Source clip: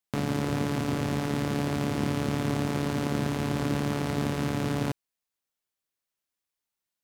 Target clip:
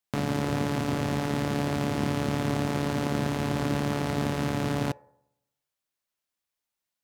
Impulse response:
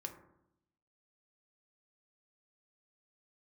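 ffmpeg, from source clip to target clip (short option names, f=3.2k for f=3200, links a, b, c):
-filter_complex "[0:a]asplit=2[a][b];[b]lowshelf=f=400:t=q:w=3:g=-10.5[c];[1:a]atrim=start_sample=2205,lowpass=8k[d];[c][d]afir=irnorm=-1:irlink=0,volume=-12.5dB[e];[a][e]amix=inputs=2:normalize=0"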